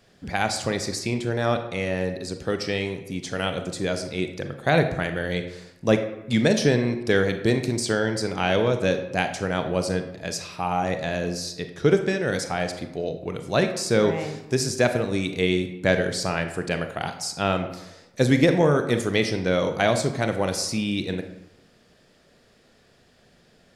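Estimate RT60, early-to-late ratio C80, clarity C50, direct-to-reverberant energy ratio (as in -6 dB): 0.95 s, 11.5 dB, 9.0 dB, 7.0 dB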